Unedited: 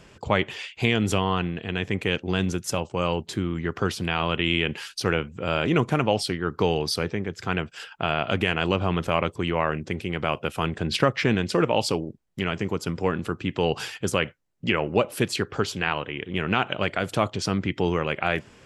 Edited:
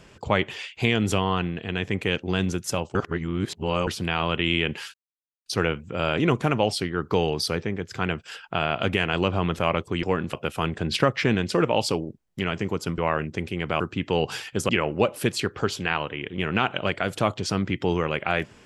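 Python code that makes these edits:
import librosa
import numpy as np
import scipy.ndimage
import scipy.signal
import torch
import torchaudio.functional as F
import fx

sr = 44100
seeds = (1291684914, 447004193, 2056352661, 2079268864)

y = fx.edit(x, sr, fx.reverse_span(start_s=2.95, length_s=0.92),
    fx.insert_silence(at_s=4.94, length_s=0.52),
    fx.swap(start_s=9.51, length_s=0.82, other_s=12.98, other_length_s=0.3),
    fx.cut(start_s=14.17, length_s=0.48), tone=tone)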